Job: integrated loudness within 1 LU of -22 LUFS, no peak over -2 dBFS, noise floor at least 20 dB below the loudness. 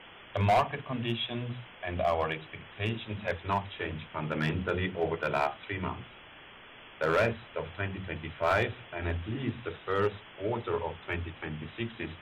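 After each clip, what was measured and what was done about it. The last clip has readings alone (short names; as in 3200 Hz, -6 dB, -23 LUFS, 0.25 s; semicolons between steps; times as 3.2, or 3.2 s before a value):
clipped 0.5%; flat tops at -19.5 dBFS; noise floor -51 dBFS; noise floor target -53 dBFS; loudness -32.5 LUFS; peak -19.5 dBFS; loudness target -22.0 LUFS
-> clip repair -19.5 dBFS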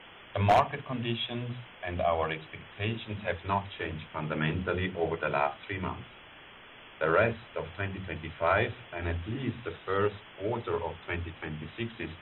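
clipped 0.0%; noise floor -51 dBFS; noise floor target -52 dBFS
-> noise print and reduce 6 dB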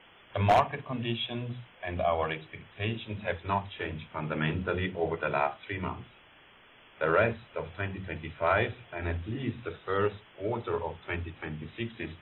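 noise floor -57 dBFS; loudness -32.0 LUFS; peak -10.5 dBFS; loudness target -22.0 LUFS
-> gain +10 dB; limiter -2 dBFS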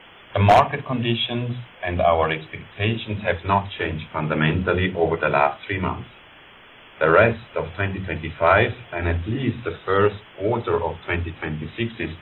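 loudness -22.0 LUFS; peak -2.0 dBFS; noise floor -47 dBFS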